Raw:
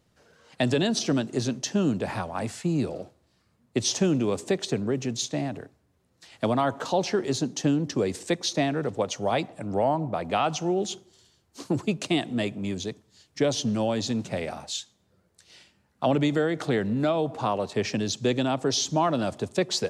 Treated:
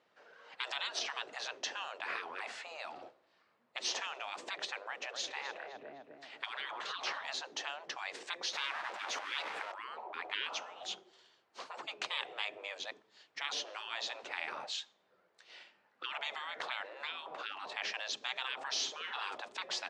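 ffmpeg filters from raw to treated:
-filter_complex "[0:a]asplit=3[s0][s1][s2];[s0]afade=t=out:st=5.02:d=0.02[s3];[s1]asplit=2[s4][s5];[s5]adelay=255,lowpass=f=3400:p=1,volume=0.299,asplit=2[s6][s7];[s7]adelay=255,lowpass=f=3400:p=1,volume=0.47,asplit=2[s8][s9];[s9]adelay=255,lowpass=f=3400:p=1,volume=0.47,asplit=2[s10][s11];[s11]adelay=255,lowpass=f=3400:p=1,volume=0.47,asplit=2[s12][s13];[s13]adelay=255,lowpass=f=3400:p=1,volume=0.47[s14];[s4][s6][s8][s10][s12][s14]amix=inputs=6:normalize=0,afade=t=in:st=5.02:d=0.02,afade=t=out:st=7.27:d=0.02[s15];[s2]afade=t=in:st=7.27:d=0.02[s16];[s3][s15][s16]amix=inputs=3:normalize=0,asettb=1/sr,asplit=3[s17][s18][s19];[s17]atrim=end=8.534[s20];[s18]atrim=start=8.53:end=9.72,asetpts=PTS-STARTPTS,afade=t=in:d=0.004:c=qsin,afade=t=out:st=1.186:d=0.004:c=qsin,aeval=exprs='val(0)+0.5*0.0237*sgn(val(0))':c=same[s21];[s19]atrim=start=9.716[s22];[s20][s21]acrossfade=d=0.004:c1=hsin:c2=qsin[s23];[s23][s22]acrossfade=d=0.004:c1=qsin:c2=hsin,asettb=1/sr,asplit=3[s24][s25][s26];[s24]atrim=end=18.714[s27];[s25]atrim=start=18.71:end=19.37,asetpts=PTS-STARTPTS,afade=t=in:d=0.004:c=qsin,afade=t=out:st=0.656:d=0.004:c=qsin,asplit=2[s28][s29];[s29]adelay=50,volume=0.398[s30];[s28][s30]amix=inputs=2:normalize=0,atrim=end_sample=29106[s31];[s26]atrim=start=19.366[s32];[s27][s31]acrossfade=d=0.004:c1=hsin:c2=qsin[s33];[s33][s32]acrossfade=d=0.004:c1=qsin:c2=hsin,lowpass=2800,afftfilt=real='re*lt(hypot(re,im),0.0501)':imag='im*lt(hypot(re,im),0.0501)':win_size=1024:overlap=0.75,highpass=590,volume=1.41"

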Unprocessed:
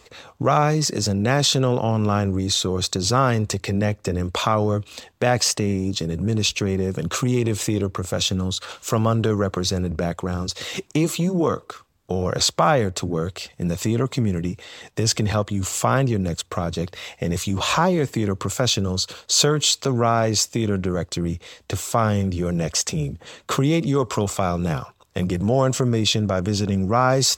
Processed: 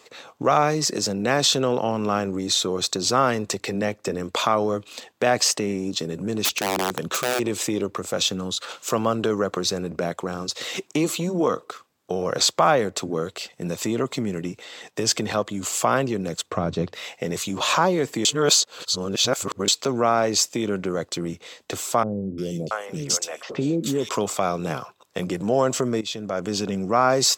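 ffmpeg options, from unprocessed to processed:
-filter_complex "[0:a]asplit=3[s0][s1][s2];[s0]afade=t=out:st=6.44:d=0.02[s3];[s1]aeval=exprs='(mod(5.31*val(0)+1,2)-1)/5.31':c=same,afade=t=in:st=6.44:d=0.02,afade=t=out:st=7.38:d=0.02[s4];[s2]afade=t=in:st=7.38:d=0.02[s5];[s3][s4][s5]amix=inputs=3:normalize=0,asettb=1/sr,asplit=3[s6][s7][s8];[s6]atrim=end=16.514[s9];[s7]atrim=start=16.51:end=16.93,asetpts=PTS-STARTPTS,afade=t=in:d=0.004:c=qsin,afade=t=out:st=0.416:d=0.004:c=qsin,aemphasis=mode=reproduction:type=bsi[s10];[s8]atrim=start=16.926[s11];[s9][s10]acrossfade=d=0.004:c1=hsin:c2=qsin[s12];[s12][s11]acrossfade=d=0.004:c1=qsin:c2=hsin,asettb=1/sr,asplit=3[s13][s14][s15];[s13]atrim=end=22.034[s16];[s14]atrim=start=22.03:end=24.09,asetpts=PTS-STARTPTS,afade=t=in:d=0.004:c=qsin,afade=t=out:st=2.056:d=0.004:c=qsin,acrossover=split=540|2900[s17][s18][s19];[s19]adelay=350[s20];[s18]adelay=680[s21];[s17][s21][s20]amix=inputs=3:normalize=0,atrim=end_sample=90846[s22];[s15]atrim=start=24.086[s23];[s16][s22]acrossfade=d=0.004:c1=hsin:c2=qsin[s24];[s24][s23]acrossfade=d=0.004:c1=qsin:c2=hsin,asplit=4[s25][s26][s27][s28];[s25]atrim=end=18.252[s29];[s26]atrim=start=18.248:end=19.682,asetpts=PTS-STARTPTS,areverse[s30];[s27]atrim=start=19.678:end=26.01,asetpts=PTS-STARTPTS,afade=t=out:st=6.328:d=0.004:c=hsin:silence=0.177828[s31];[s28]atrim=start=26.01,asetpts=PTS-STARTPTS,afade=t=in:d=0.54:silence=0.177828[s32];[s29][s30]acrossfade=d=0.004:c1=hsin:c2=hsin[s33];[s31][s32]concat=n=2:v=0:a=1[s34];[s33][s34]acrossfade=d=0.004:c1=hsin:c2=hsin,highpass=230"

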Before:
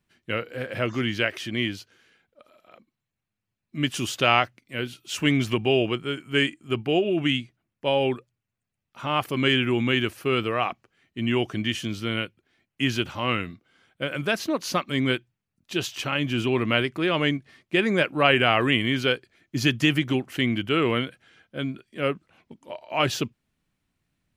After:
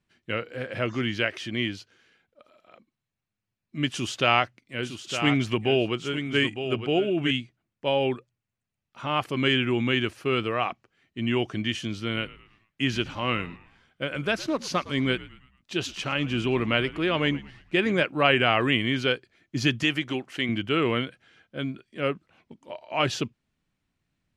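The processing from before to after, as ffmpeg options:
-filter_complex "[0:a]asettb=1/sr,asplit=3[s0][s1][s2];[s0]atrim=end=3.924[s3];[s1]atrim=start=3.92:end=7.31,asetpts=PTS-STARTPTS,afade=t=in:d=0.004:c=qsin,afade=t=out:st=3.386:d=0.004:c=qsin,aecho=1:1:909:0.355,atrim=end_sample=149499[s4];[s2]atrim=start=7.306[s5];[s3][s4]acrossfade=d=0.004:c1=hsin:c2=qsin[s6];[s6][s5]acrossfade=d=0.004:c1=qsin:c2=hsin,asettb=1/sr,asplit=3[s7][s8][s9];[s7]atrim=end=12.024[s10];[s8]atrim=start=12.02:end=18.03,asetpts=PTS-STARTPTS,afade=t=in:d=0.004:c=qsin,afade=t=out:st=6.006:d=0.004:c=qsin,asplit=5[s11][s12][s13][s14][s15];[s12]adelay=111,afreqshift=-82,volume=0.119[s16];[s13]adelay=222,afreqshift=-164,volume=0.0525[s17];[s14]adelay=333,afreqshift=-246,volume=0.0229[s18];[s15]adelay=444,afreqshift=-328,volume=0.0101[s19];[s11][s16][s17][s18][s19]amix=inputs=5:normalize=0,atrim=end_sample=265041[s20];[s9]atrim=start=18.026[s21];[s10][s20]acrossfade=d=0.004:c1=hsin:c2=qsin[s22];[s22][s21]acrossfade=d=0.004:c1=qsin:c2=hsin,asettb=1/sr,asplit=3[s23][s24][s25];[s23]atrim=end=19.834[s26];[s24]atrim=start=19.83:end=20.49,asetpts=PTS-STARTPTS,afade=t=in:d=0.004:c=qsin,afade=t=out:st=0.656:d=0.004:c=qsin,lowshelf=f=240:g=-10.5[s27];[s25]atrim=start=20.486[s28];[s26][s27]acrossfade=d=0.004:c1=hsin:c2=qsin[s29];[s29][s28]acrossfade=d=0.004:c1=qsin:c2=hsin,lowpass=7900,volume=0.841"

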